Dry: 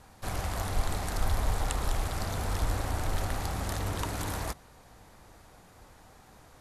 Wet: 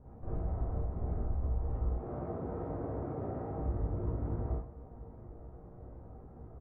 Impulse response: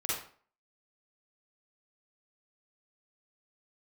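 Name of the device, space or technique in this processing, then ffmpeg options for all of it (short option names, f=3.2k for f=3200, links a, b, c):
television next door: -filter_complex "[0:a]asettb=1/sr,asplit=3[a][b][c];[a]atrim=end=1.894[d];[b]atrim=start=1.89:end=3.6,asetpts=PTS-STARTPTS,afade=t=in:d=0.004:c=qsin,afade=t=out:st=1.706:d=0.004:c=qsin,highpass=170[e];[c]atrim=start=3.596[f];[d][e]acrossfade=d=0.004:c1=hsin:c2=qsin[g];[g][f]acrossfade=d=0.004:c1=qsin:c2=hsin,lowpass=1.8k,asplit=2[h][i];[i]adelay=17,volume=-7.5dB[j];[h][j]amix=inputs=2:normalize=0,acompressor=threshold=-38dB:ratio=4,lowpass=460[k];[1:a]atrim=start_sample=2205[l];[k][l]afir=irnorm=-1:irlink=0,volume=2.5dB"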